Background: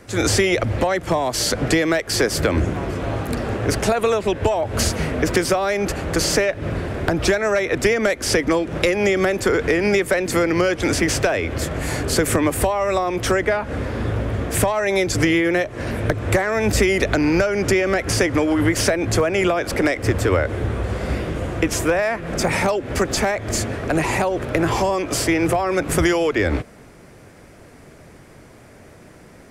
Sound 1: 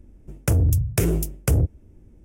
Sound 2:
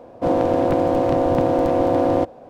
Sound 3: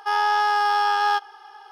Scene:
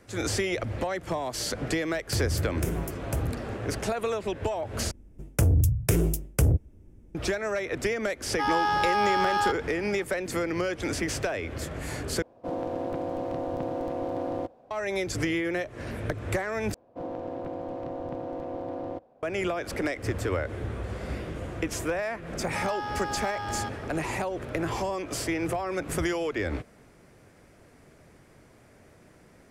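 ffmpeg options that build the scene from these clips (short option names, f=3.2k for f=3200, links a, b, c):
-filter_complex "[1:a]asplit=2[a][b];[3:a]asplit=2[c][d];[2:a]asplit=2[e][f];[0:a]volume=-10.5dB[g];[f]lowpass=f=3.6k:p=1[h];[d]alimiter=limit=-23.5dB:level=0:latency=1:release=71[i];[g]asplit=4[j][k][l][m];[j]atrim=end=4.914[n];[b]atrim=end=2.24,asetpts=PTS-STARTPTS,volume=-2.5dB[o];[k]atrim=start=7.146:end=12.224[p];[e]atrim=end=2.49,asetpts=PTS-STARTPTS,volume=-13.5dB[q];[l]atrim=start=14.706:end=16.744[r];[h]atrim=end=2.49,asetpts=PTS-STARTPTS,volume=-17dB[s];[m]atrim=start=19.226[t];[a]atrim=end=2.24,asetpts=PTS-STARTPTS,volume=-10.5dB,afade=t=in:d=0.004:c=hsin,afade=t=out:st=2.236:d=0.004:c=hsin,adelay=1650[u];[c]atrim=end=1.71,asetpts=PTS-STARTPTS,volume=-5dB,afade=t=in:d=0.004:c=hsin,afade=t=out:st=1.706:d=0.004:c=hsin,adelay=8330[v];[i]atrim=end=1.71,asetpts=PTS-STARTPTS,volume=-4dB,afade=t=in:d=0.004:c=hsin,afade=t=out:st=1.706:d=0.004:c=hsin,adelay=22500[w];[n][o]acrossfade=d=0.004:c1=hsin:c2=hsin[x];[x][p]acrossfade=d=0.004:c1=hsin:c2=hsin[y];[y][q]acrossfade=d=0.004:c1=hsin:c2=hsin[z];[z][r]acrossfade=d=0.004:c1=hsin:c2=hsin[aa];[aa][s]acrossfade=d=0.004:c1=hsin:c2=hsin[ab];[ab][t]acrossfade=d=0.004:c1=hsin:c2=hsin[ac];[ac][u][v][w]amix=inputs=4:normalize=0"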